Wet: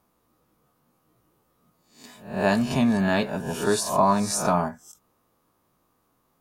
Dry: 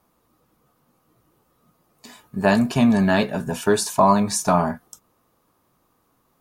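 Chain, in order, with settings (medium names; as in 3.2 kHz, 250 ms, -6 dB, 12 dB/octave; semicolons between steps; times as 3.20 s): reverse spectral sustain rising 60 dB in 0.46 s; endings held to a fixed fall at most 240 dB/s; trim -5 dB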